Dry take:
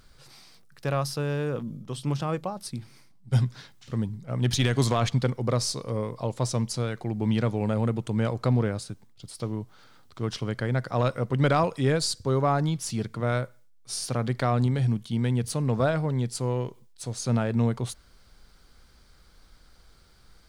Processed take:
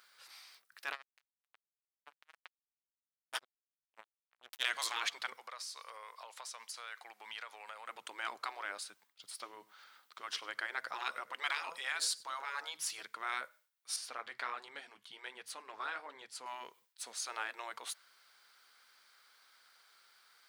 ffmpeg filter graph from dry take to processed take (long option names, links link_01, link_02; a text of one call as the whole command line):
ffmpeg -i in.wav -filter_complex "[0:a]asettb=1/sr,asplit=3[link_01][link_02][link_03];[link_01]atrim=end=0.924[link_04];[link_02]atrim=start=0.92:end=4.65,asetpts=PTS-STARTPTS,afade=type=in:duration=0.004:curve=qsin,afade=type=out:start_time=3.726:duration=0.004:curve=qsin,acrusher=bits=2:mix=0:aa=0.5,aeval=exprs='val(0)*pow(10,-24*(0.5-0.5*cos(2*PI*7.8*n/s))/20)':channel_layout=same[link_05];[link_03]atrim=start=4.646[link_06];[link_04][link_05]acrossfade=duration=0.004:curve1=hsin:curve2=qsin[link_07];[link_07][link_06]acrossfade=duration=0.004:curve1=qsin:curve2=hsin,asettb=1/sr,asplit=3[link_08][link_09][link_10];[link_08]atrim=end=5.384[link_11];[link_09]atrim=start=5.38:end=7.89,asetpts=PTS-STARTPTS,afade=type=in:duration=0.004:curve=qsin,afade=type=out:start_time=2.506:duration=0.004:curve=qsin,highpass=790,acompressor=threshold=-37dB:ratio=8:attack=3.2:release=140:knee=1:detection=peak[link_12];[link_10]atrim=start=7.886[link_13];[link_11][link_12]acrossfade=duration=0.004:curve1=hsin:curve2=qsin[link_14];[link_14][link_13]acrossfade=duration=0.004:curve1=qsin:curve2=hsin,asettb=1/sr,asplit=3[link_15][link_16][link_17];[link_15]atrim=end=9.524[link_18];[link_16]atrim=start=9.52:end=13.01,asetpts=PTS-STARTPTS,afade=type=in:duration=0.004:curve=qsin,afade=type=out:start_time=3.486:duration=0.004:curve=qsin,lowshelf=frequency=120:width_type=q:width=3:gain=-6.5,aecho=1:1:98:0.075,atrim=end_sample=153909[link_19];[link_17]atrim=start=13.006[link_20];[link_18][link_19]acrossfade=duration=0.004:curve1=hsin:curve2=qsin[link_21];[link_21][link_20]acrossfade=duration=0.004:curve1=qsin:curve2=hsin,asettb=1/sr,asplit=3[link_22][link_23][link_24];[link_22]atrim=end=13.964[link_25];[link_23]atrim=start=13.96:end=16.46,asetpts=PTS-STARTPTS,afade=type=in:duration=0.004:curve=qsin,afade=type=out:start_time=2.496:duration=0.004:curve=qsin,highshelf=frequency=7000:gain=-8.5,flanger=delay=2.6:depth=9.5:regen=-46:speed=1.3:shape=triangular[link_26];[link_24]atrim=start=16.456[link_27];[link_25][link_26]acrossfade=duration=0.004:curve1=hsin:curve2=qsin[link_28];[link_28][link_27]acrossfade=duration=0.004:curve1=qsin:curve2=hsin,afftfilt=real='re*lt(hypot(re,im),0.158)':imag='im*lt(hypot(re,im),0.158)':win_size=1024:overlap=0.75,highpass=1400,equalizer=frequency=6700:width_type=o:width=2.2:gain=-8,volume=3dB" out.wav